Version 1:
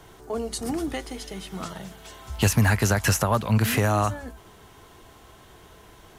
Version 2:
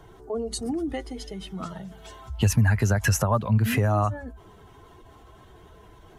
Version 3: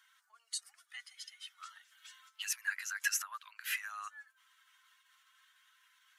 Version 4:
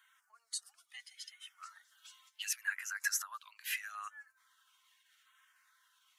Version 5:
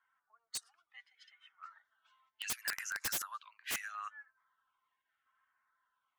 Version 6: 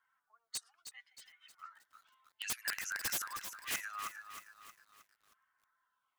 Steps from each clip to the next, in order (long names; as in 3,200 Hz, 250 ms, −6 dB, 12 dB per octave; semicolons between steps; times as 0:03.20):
expanding power law on the bin magnitudes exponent 1.5
Butterworth high-pass 1,400 Hz 36 dB per octave; level −5.5 dB
auto-filter notch saw down 0.76 Hz 900–5,400 Hz
low-pass that shuts in the quiet parts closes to 800 Hz, open at −35 dBFS; wrap-around overflow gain 30.5 dB; level +1.5 dB
feedback echo at a low word length 314 ms, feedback 55%, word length 10 bits, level −9 dB